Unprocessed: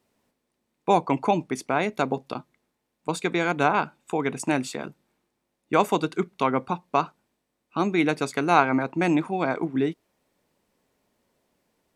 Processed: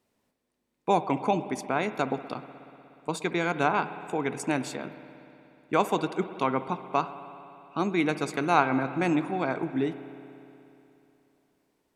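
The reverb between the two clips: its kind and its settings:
spring reverb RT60 3 s, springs 60 ms, chirp 75 ms, DRR 11.5 dB
level −3.5 dB

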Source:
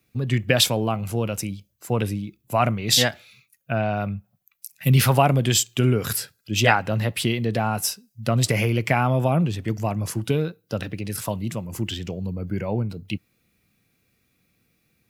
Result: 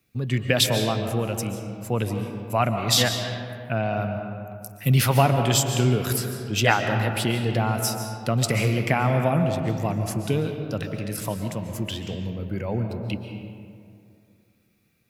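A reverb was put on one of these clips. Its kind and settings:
comb and all-pass reverb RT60 2.4 s, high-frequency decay 0.45×, pre-delay 100 ms, DRR 5.5 dB
level −2 dB

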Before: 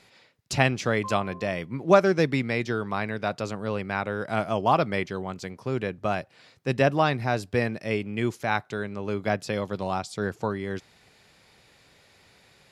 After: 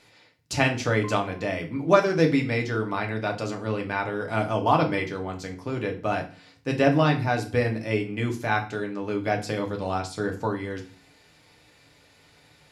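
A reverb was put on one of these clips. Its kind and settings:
feedback delay network reverb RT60 0.39 s, low-frequency decay 1.45×, high-frequency decay 0.9×, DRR 1.5 dB
level −1.5 dB

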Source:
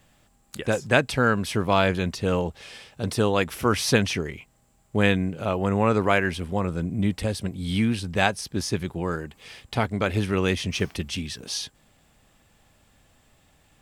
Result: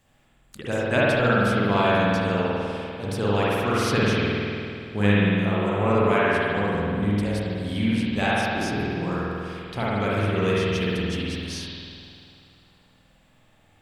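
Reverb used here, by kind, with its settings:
spring reverb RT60 2.5 s, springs 49 ms, chirp 30 ms, DRR −7.5 dB
level −6.5 dB

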